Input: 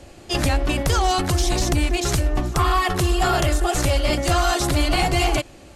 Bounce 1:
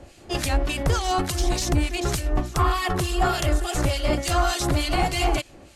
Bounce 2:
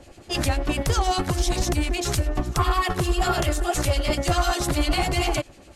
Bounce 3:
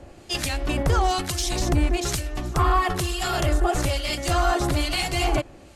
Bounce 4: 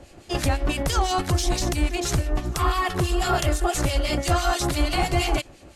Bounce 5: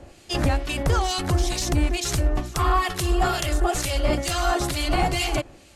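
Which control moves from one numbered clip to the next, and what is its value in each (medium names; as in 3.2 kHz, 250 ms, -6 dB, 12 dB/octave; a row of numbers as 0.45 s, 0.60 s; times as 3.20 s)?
harmonic tremolo, rate: 3.4 Hz, 10 Hz, 1.1 Hz, 6 Hz, 2.2 Hz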